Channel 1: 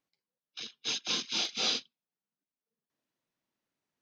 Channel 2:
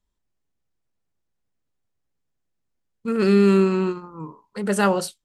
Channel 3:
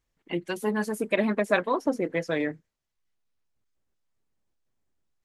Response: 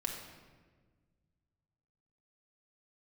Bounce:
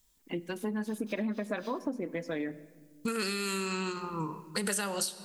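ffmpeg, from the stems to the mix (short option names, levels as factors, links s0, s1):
-filter_complex "[0:a]acrusher=bits=5:mix=0:aa=0.000001,volume=0.106[s0];[1:a]acrossover=split=730|5800[s1][s2][s3];[s1]acompressor=threshold=0.0447:ratio=4[s4];[s2]acompressor=threshold=0.0316:ratio=4[s5];[s3]acompressor=threshold=0.00708:ratio=4[s6];[s4][s5][s6]amix=inputs=3:normalize=0,crystalizer=i=6.5:c=0,volume=1,asplit=2[s7][s8];[s8]volume=0.282[s9];[2:a]equalizer=f=240:t=o:w=0.7:g=8,volume=0.422,asplit=3[s10][s11][s12];[s11]volume=0.188[s13];[s12]apad=whole_len=177079[s14];[s0][s14]sidechaincompress=threshold=0.0178:ratio=8:attack=9.6:release=102[s15];[3:a]atrim=start_sample=2205[s16];[s9][s13]amix=inputs=2:normalize=0[s17];[s17][s16]afir=irnorm=-1:irlink=0[s18];[s15][s7][s10][s18]amix=inputs=4:normalize=0,acompressor=threshold=0.0316:ratio=6"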